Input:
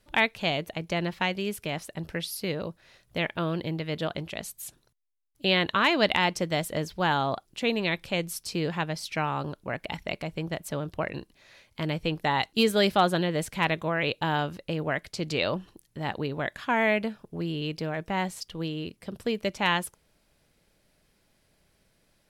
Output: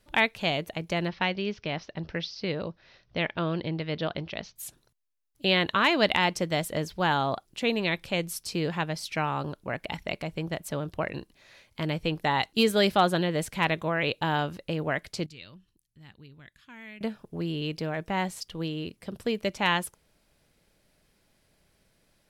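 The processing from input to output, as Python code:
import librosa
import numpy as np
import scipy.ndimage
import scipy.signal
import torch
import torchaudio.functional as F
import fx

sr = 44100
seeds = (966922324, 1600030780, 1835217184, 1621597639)

y = fx.steep_lowpass(x, sr, hz=5900.0, slope=72, at=(1.08, 4.56))
y = fx.tone_stack(y, sr, knobs='6-0-2', at=(15.26, 17.01))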